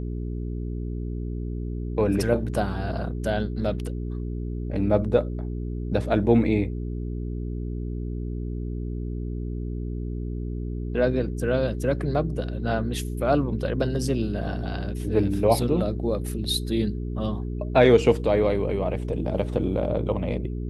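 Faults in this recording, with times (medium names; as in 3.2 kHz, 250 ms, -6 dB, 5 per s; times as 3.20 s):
hum 60 Hz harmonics 7 -30 dBFS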